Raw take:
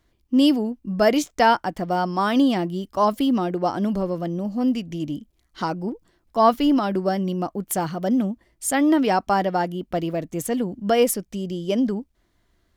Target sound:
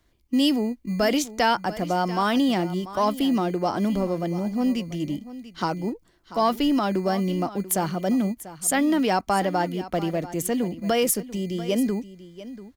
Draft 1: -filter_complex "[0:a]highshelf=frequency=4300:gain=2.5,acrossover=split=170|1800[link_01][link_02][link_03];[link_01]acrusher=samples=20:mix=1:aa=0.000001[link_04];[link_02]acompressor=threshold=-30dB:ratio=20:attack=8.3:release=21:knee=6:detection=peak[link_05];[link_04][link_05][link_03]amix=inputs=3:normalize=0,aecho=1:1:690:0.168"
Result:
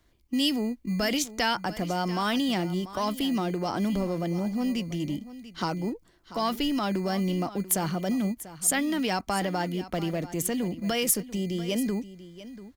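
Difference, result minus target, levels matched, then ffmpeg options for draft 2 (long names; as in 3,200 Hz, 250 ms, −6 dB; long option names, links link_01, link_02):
downward compressor: peak gain reduction +9 dB
-filter_complex "[0:a]highshelf=frequency=4300:gain=2.5,acrossover=split=170|1800[link_01][link_02][link_03];[link_01]acrusher=samples=20:mix=1:aa=0.000001[link_04];[link_02]acompressor=threshold=-20.5dB:ratio=20:attack=8.3:release=21:knee=6:detection=peak[link_05];[link_04][link_05][link_03]amix=inputs=3:normalize=0,aecho=1:1:690:0.168"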